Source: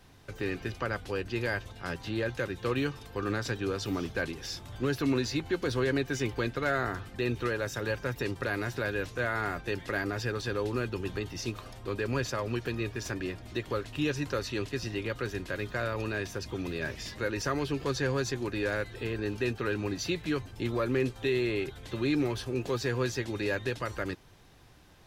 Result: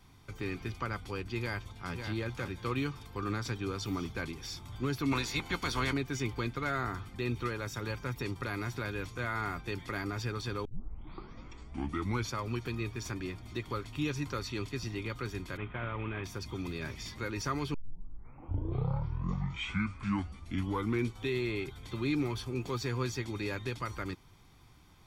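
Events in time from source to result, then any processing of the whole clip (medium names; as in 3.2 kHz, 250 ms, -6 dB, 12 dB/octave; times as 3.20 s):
1.38–1.96 s: echo throw 550 ms, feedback 15%, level -6.5 dB
5.11–5.92 s: spectral peaks clipped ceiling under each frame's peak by 17 dB
10.65 s: tape start 1.71 s
15.57–16.24 s: CVSD coder 16 kbps
17.74 s: tape start 3.56 s
whole clip: comb 0.9 ms, depth 51%; trim -4 dB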